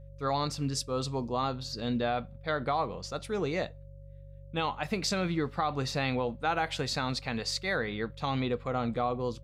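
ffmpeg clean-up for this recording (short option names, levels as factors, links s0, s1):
-af "bandreject=f=48:t=h:w=4,bandreject=f=96:t=h:w=4,bandreject=f=144:t=h:w=4,bandreject=f=550:w=30"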